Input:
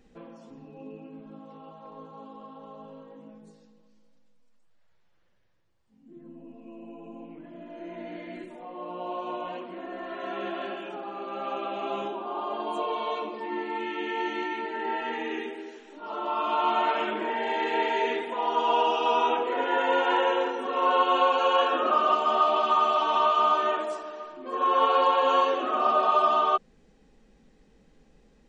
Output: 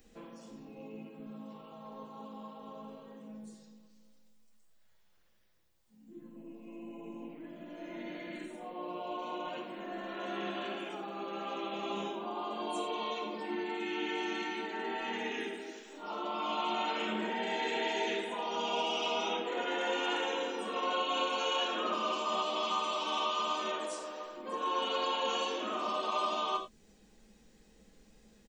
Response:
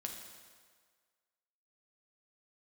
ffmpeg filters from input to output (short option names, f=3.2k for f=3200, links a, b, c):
-filter_complex "[0:a]acrossover=split=330|3000[a][b][c];[b]acompressor=threshold=-37dB:ratio=2[d];[a][d][c]amix=inputs=3:normalize=0,aemphasis=mode=production:type=75kf,asplit=2[e][f];[f]asetrate=37084,aresample=44100,atempo=1.18921,volume=-10dB[g];[e][g]amix=inputs=2:normalize=0[h];[1:a]atrim=start_sample=2205,afade=t=out:st=0.16:d=0.01,atrim=end_sample=7497[i];[h][i]afir=irnorm=-1:irlink=0,volume=-1.5dB"